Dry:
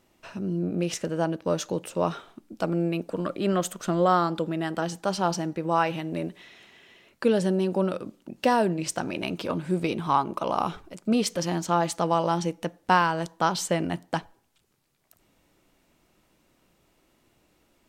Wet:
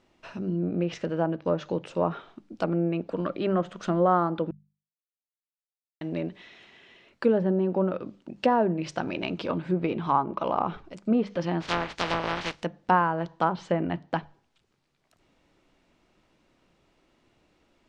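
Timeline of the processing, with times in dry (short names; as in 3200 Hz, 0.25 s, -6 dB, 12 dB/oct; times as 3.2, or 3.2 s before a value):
4.51–6.01 mute
11.6–12.62 spectral contrast lowered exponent 0.21
13.45–14.18 high shelf 8000 Hz -10.5 dB
whole clip: LPF 5100 Hz 12 dB/oct; notches 50/100/150/200 Hz; treble ducked by the level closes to 1400 Hz, closed at -20.5 dBFS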